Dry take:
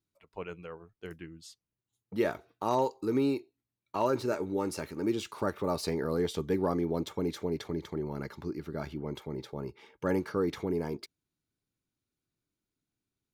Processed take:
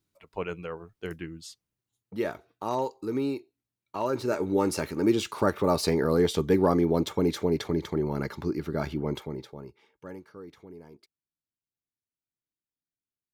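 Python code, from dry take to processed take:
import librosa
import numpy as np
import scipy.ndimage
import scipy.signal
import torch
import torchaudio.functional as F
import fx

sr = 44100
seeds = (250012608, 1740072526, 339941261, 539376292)

y = fx.gain(x, sr, db=fx.line((1.36, 7.0), (2.17, -1.0), (4.04, -1.0), (4.54, 7.0), (9.13, 7.0), (9.55, -3.5), (10.25, -15.0)))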